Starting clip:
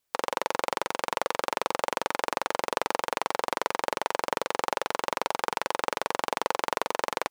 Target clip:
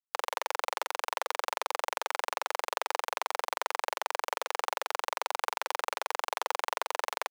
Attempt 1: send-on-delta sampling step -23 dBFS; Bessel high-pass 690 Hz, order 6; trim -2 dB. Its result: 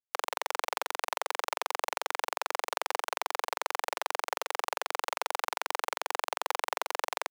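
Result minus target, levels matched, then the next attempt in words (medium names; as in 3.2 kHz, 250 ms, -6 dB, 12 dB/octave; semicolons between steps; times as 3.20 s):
send-on-delta sampling: distortion +10 dB
send-on-delta sampling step -33.5 dBFS; Bessel high-pass 690 Hz, order 6; trim -2 dB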